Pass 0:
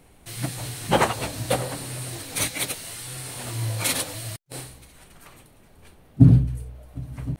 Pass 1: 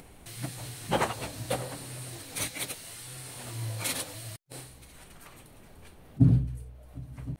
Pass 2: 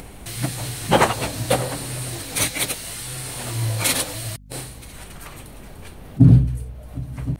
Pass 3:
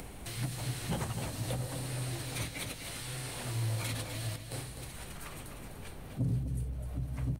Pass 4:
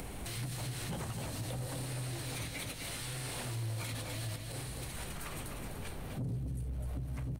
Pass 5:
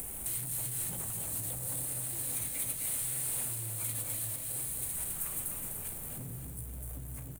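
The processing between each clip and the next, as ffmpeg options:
ffmpeg -i in.wav -af "acompressor=mode=upward:threshold=-34dB:ratio=2.5,volume=-7.5dB" out.wav
ffmpeg -i in.wav -af "aeval=exprs='val(0)+0.00178*(sin(2*PI*50*n/s)+sin(2*PI*2*50*n/s)/2+sin(2*PI*3*50*n/s)/3+sin(2*PI*4*50*n/s)/4+sin(2*PI*5*50*n/s)/5)':channel_layout=same,alimiter=level_in=12.5dB:limit=-1dB:release=50:level=0:latency=1,volume=-1dB" out.wav
ffmpeg -i in.wav -filter_complex "[0:a]acrossover=split=180|4900[link_01][link_02][link_03];[link_01]acompressor=threshold=-24dB:ratio=4[link_04];[link_02]acompressor=threshold=-34dB:ratio=4[link_05];[link_03]acompressor=threshold=-40dB:ratio=4[link_06];[link_04][link_05][link_06]amix=inputs=3:normalize=0,asoftclip=type=tanh:threshold=-17.5dB,asplit=2[link_07][link_08];[link_08]aecho=0:1:253|506|759|1012:0.398|0.135|0.046|0.0156[link_09];[link_07][link_09]amix=inputs=2:normalize=0,volume=-6.5dB" out.wav
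ffmpeg -i in.wav -af "alimiter=level_in=9.5dB:limit=-24dB:level=0:latency=1:release=150,volume=-9.5dB,asoftclip=type=tanh:threshold=-35dB,volume=4dB" out.wav
ffmpeg -i in.wav -filter_complex "[0:a]asplit=2[link_01][link_02];[link_02]acrusher=bits=6:mix=0:aa=0.000001,volume=-8dB[link_03];[link_01][link_03]amix=inputs=2:normalize=0,aexciter=amount=7.1:drive=6.9:freq=7400,aecho=1:1:287|574|861|1148|1435|1722|2009:0.335|0.201|0.121|0.0724|0.0434|0.026|0.0156,volume=-9dB" out.wav

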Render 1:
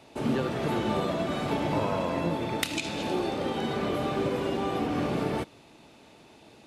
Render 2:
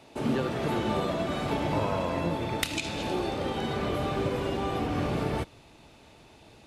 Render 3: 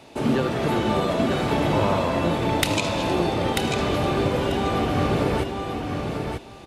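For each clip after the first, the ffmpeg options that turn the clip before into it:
ffmpeg -i in.wav -af "asubboost=boost=3.5:cutoff=110" out.wav
ffmpeg -i in.wav -af "aecho=1:1:941|1882|2823:0.562|0.09|0.0144,volume=6dB" out.wav

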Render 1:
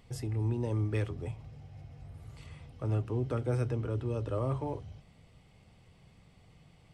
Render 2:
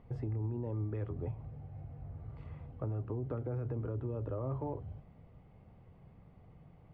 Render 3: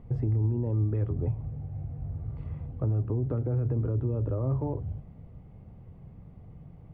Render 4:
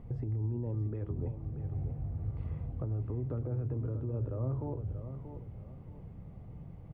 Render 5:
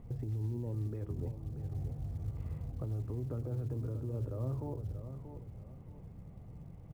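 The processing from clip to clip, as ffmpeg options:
ffmpeg -i in.wav -af "lowpass=1200,alimiter=level_in=1.5dB:limit=-24dB:level=0:latency=1:release=22,volume=-1.5dB,acompressor=threshold=-36dB:ratio=4,volume=2dB" out.wav
ffmpeg -i in.wav -af "lowshelf=frequency=430:gain=11" out.wav
ffmpeg -i in.wav -af "alimiter=level_in=3.5dB:limit=-24dB:level=0:latency=1:release=462,volume=-3.5dB,aecho=1:1:633|1266|1899|2532:0.335|0.114|0.0387|0.0132" out.wav
ffmpeg -i in.wav -af "acrusher=bits=9:mode=log:mix=0:aa=0.000001,volume=-2.5dB" out.wav

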